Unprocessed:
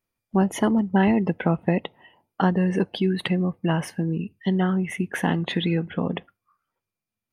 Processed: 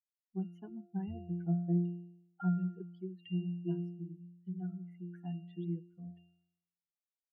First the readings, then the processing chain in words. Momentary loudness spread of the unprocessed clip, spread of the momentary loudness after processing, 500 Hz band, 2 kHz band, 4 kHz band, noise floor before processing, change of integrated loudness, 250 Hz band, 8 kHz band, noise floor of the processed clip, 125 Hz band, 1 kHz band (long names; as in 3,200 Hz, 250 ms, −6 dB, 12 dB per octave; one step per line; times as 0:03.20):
7 LU, 14 LU, −20.5 dB, −30.0 dB, below −25 dB, below −85 dBFS, −15.0 dB, −14.5 dB, below −35 dB, below −85 dBFS, −11.5 dB, −25.0 dB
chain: spectral dynamics exaggerated over time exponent 3
resonances in every octave F, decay 0.74 s
level +6.5 dB